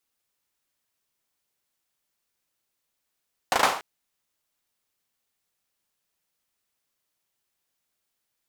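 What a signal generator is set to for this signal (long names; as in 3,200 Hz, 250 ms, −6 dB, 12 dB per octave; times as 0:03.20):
synth clap length 0.29 s, apart 37 ms, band 860 Hz, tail 0.45 s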